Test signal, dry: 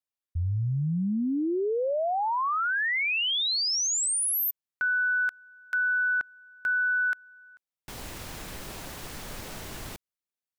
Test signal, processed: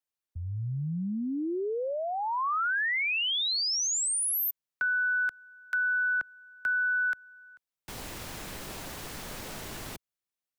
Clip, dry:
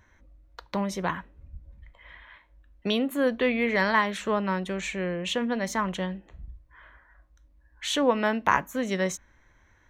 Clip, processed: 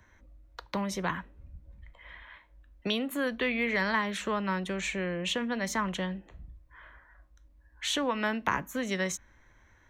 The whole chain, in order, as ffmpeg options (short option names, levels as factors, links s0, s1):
-filter_complex "[0:a]acrossover=split=120|460|960[s0][s1][s2][s3];[s0]acompressor=threshold=0.00562:ratio=4[s4];[s1]acompressor=threshold=0.0224:ratio=4[s5];[s2]acompressor=threshold=0.00891:ratio=4[s6];[s3]acompressor=threshold=0.0447:ratio=4[s7];[s4][s5][s6][s7]amix=inputs=4:normalize=0"